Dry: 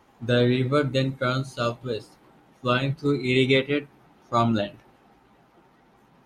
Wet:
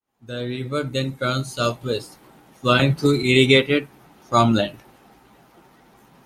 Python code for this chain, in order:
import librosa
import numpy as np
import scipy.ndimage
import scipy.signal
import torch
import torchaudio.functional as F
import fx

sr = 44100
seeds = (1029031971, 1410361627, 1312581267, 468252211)

y = fx.fade_in_head(x, sr, length_s=1.94)
y = fx.high_shelf(y, sr, hz=6000.0, db=12.0)
y = fx.band_squash(y, sr, depth_pct=100, at=(2.79, 3.23))
y = y * 10.0 ** (5.0 / 20.0)